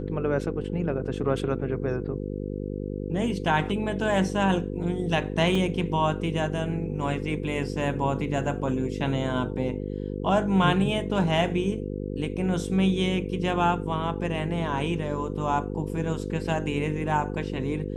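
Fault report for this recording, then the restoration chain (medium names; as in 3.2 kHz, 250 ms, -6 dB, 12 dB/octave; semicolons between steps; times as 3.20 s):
buzz 50 Hz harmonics 10 -32 dBFS
5.55 s: dropout 2.2 ms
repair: de-hum 50 Hz, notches 10; interpolate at 5.55 s, 2.2 ms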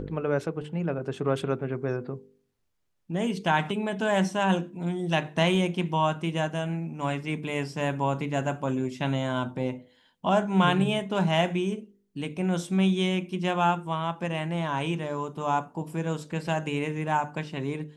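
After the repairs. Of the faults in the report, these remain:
nothing left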